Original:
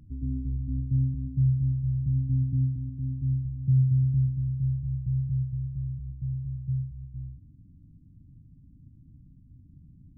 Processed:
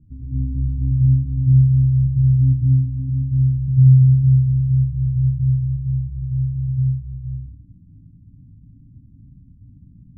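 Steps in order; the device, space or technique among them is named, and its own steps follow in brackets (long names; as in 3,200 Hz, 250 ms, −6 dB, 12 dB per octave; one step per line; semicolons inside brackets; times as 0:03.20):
next room (low-pass filter 330 Hz 24 dB per octave; convolution reverb RT60 0.45 s, pre-delay 82 ms, DRR −4.5 dB)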